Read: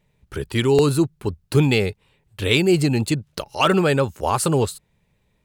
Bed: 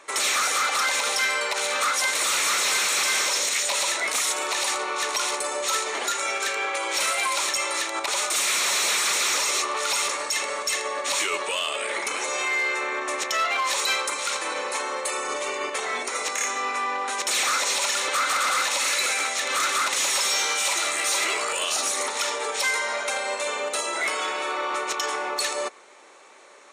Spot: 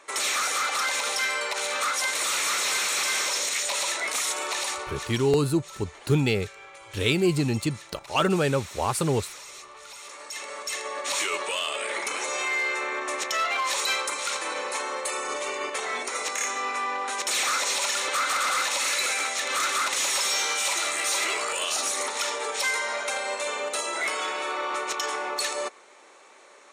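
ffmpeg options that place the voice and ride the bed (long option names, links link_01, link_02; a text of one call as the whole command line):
ffmpeg -i stem1.wav -i stem2.wav -filter_complex "[0:a]adelay=4550,volume=-5.5dB[link_01];[1:a]volume=14dB,afade=type=out:start_time=4.54:duration=0.75:silence=0.158489,afade=type=in:start_time=10.01:duration=1.24:silence=0.141254[link_02];[link_01][link_02]amix=inputs=2:normalize=0" out.wav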